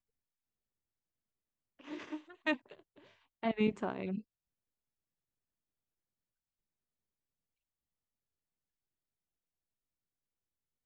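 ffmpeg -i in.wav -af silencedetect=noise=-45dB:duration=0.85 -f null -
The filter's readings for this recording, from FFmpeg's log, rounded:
silence_start: 0.00
silence_end: 1.81 | silence_duration: 1.81
silence_start: 4.20
silence_end: 10.86 | silence_duration: 6.65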